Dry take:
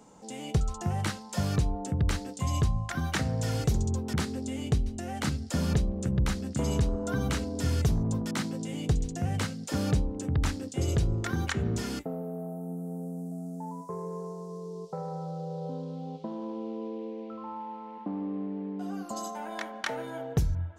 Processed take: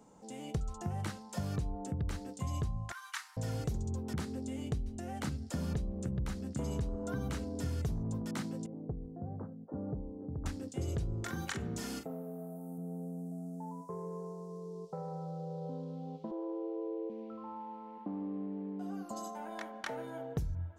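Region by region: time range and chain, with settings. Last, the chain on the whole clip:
2.92–3.37 CVSD 64 kbps + steep high-pass 940 Hz 72 dB/oct
8.66–10.46 Gaussian blur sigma 10 samples + low shelf 170 Hz -11.5 dB
11.24–12.78 tilt +1.5 dB/oct + doubler 42 ms -8 dB
16.31–17.1 brick-wall FIR high-pass 310 Hz + tilt -4.5 dB/oct
whole clip: high shelf 2100 Hz -10 dB; compressor 2.5:1, threshold -29 dBFS; high shelf 5400 Hz +9 dB; gain -4.5 dB

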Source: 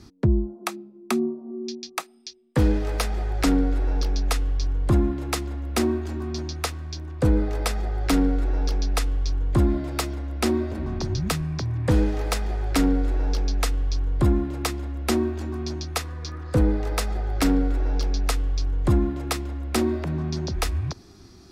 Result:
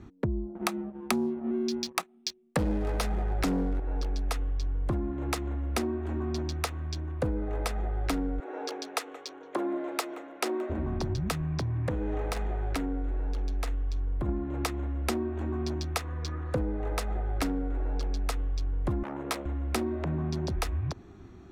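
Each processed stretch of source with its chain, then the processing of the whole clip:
0.55–3.8 bell 180 Hz +10.5 dB 0.43 oct + sample leveller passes 2
8.4–10.7 HPF 340 Hz 24 dB/oct + echo 0.175 s -18 dB
11.62–14.29 doubler 46 ms -14 dB + compressor, threshold -23 dBFS
19.03–19.46 HPF 160 Hz + doubler 15 ms -7 dB + core saturation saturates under 2100 Hz
whole clip: Wiener smoothing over 9 samples; dynamic EQ 710 Hz, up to +3 dB, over -36 dBFS, Q 0.74; compressor, threshold -27 dBFS

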